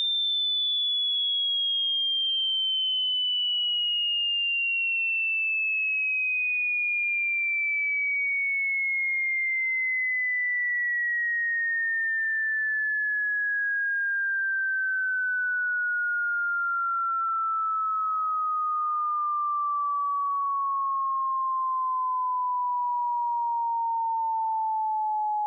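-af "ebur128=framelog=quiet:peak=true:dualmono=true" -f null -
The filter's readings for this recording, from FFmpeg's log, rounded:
Integrated loudness:
  I:         -21.7 LUFS
  Threshold: -31.7 LUFS
Loudness range:
  LRA:         3.9 LU
  Threshold: -41.7 LUFS
  LRA low:   -23.9 LUFS
  LRA high:  -20.0 LUFS
True peak:
  Peak:      -22.8 dBFS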